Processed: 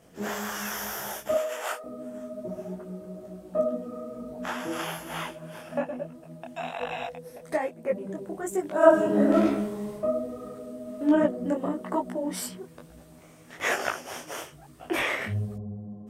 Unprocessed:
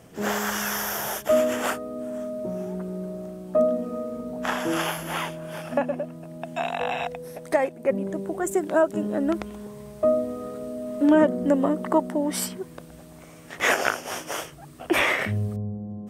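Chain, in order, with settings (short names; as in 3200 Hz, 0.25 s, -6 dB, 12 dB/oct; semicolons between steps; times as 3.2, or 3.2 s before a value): 1.34–1.84 HPF 480 Hz 24 dB/oct; 8.76–9.92 reverb throw, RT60 0.82 s, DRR -8.5 dB; detuned doubles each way 40 cents; gain -2 dB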